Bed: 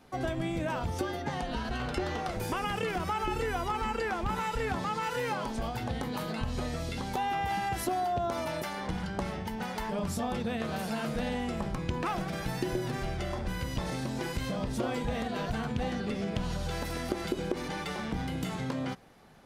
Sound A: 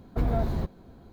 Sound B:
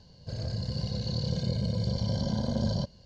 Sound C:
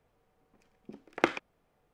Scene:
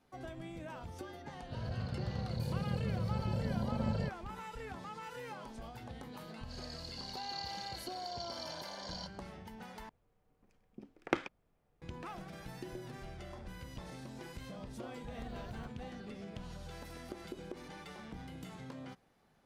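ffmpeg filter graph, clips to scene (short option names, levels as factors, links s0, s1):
-filter_complex "[2:a]asplit=2[s0][s1];[0:a]volume=0.211[s2];[s0]lowpass=2800[s3];[s1]highpass=f=770:w=0.5412,highpass=f=770:w=1.3066[s4];[3:a]lowshelf=f=210:g=9[s5];[1:a]acompressor=threshold=0.0447:ratio=6:attack=3.2:release=140:knee=1:detection=peak[s6];[s2]asplit=2[s7][s8];[s7]atrim=end=9.894[s9];[s5]atrim=end=1.93,asetpts=PTS-STARTPTS,volume=0.422[s10];[s8]atrim=start=11.816[s11];[s3]atrim=end=3.05,asetpts=PTS-STARTPTS,volume=0.501,afade=t=in:d=0.004:c=hsin,afade=t=out:st=3.046:d=0.004:c=hsin,adelay=1240[s12];[s4]atrim=end=3.05,asetpts=PTS-STARTPTS,volume=0.631,afade=t=in:d=0.004:c=hsin,afade=t=out:st=3.046:d=0.004:c=hsin,adelay=6220[s13];[s6]atrim=end=1.12,asetpts=PTS-STARTPTS,volume=0.158,afade=t=in:d=0.004:c=hsin,afade=t=out:st=1.116:d=0.004:c=hsin,adelay=15020[s14];[s9][s10]acrossfade=d=0.004:c1=hsin:c2=hsin[s15];[s15][s11]acrossfade=d=0.004:c1=hsin:c2=hsin[s16];[s16][s12][s13][s14]amix=inputs=4:normalize=0"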